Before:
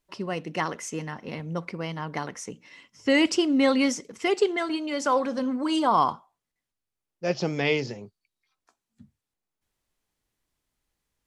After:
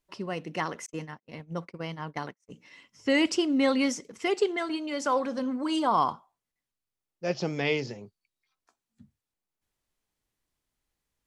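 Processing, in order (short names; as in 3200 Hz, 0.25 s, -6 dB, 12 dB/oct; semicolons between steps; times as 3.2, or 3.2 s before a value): 0.86–2.51 gate -33 dBFS, range -46 dB; gain -3 dB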